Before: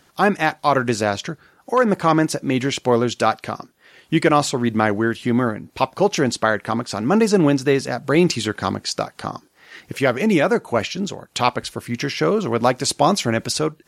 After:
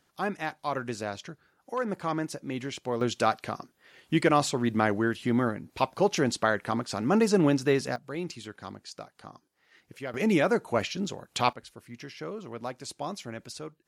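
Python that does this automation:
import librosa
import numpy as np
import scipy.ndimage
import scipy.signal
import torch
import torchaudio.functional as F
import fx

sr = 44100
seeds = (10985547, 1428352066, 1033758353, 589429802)

y = fx.gain(x, sr, db=fx.steps((0.0, -14.0), (3.01, -7.0), (7.96, -19.0), (10.14, -7.0), (11.53, -19.0)))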